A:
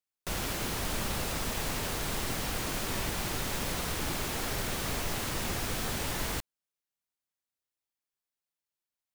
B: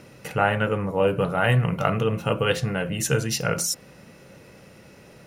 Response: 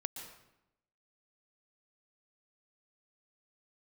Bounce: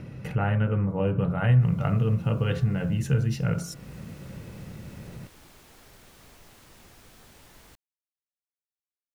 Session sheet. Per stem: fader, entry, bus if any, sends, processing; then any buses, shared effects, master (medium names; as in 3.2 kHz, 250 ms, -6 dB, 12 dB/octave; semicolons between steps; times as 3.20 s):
-19.5 dB, 1.35 s, no send, none
-0.5 dB, 0.00 s, no send, tone controls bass +15 dB, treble -10 dB; de-hum 46.32 Hz, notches 35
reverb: none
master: compression 1.5:1, threshold -37 dBFS, peak gain reduction 11.5 dB